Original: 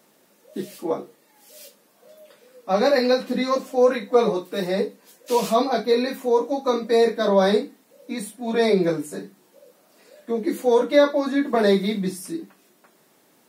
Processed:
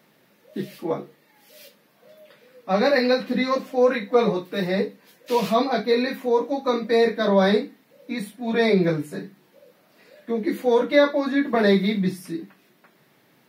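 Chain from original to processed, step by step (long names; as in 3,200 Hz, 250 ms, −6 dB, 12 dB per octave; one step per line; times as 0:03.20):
octave-band graphic EQ 125/2,000/4,000/8,000 Hz +12/+6/+3/−9 dB
level −2 dB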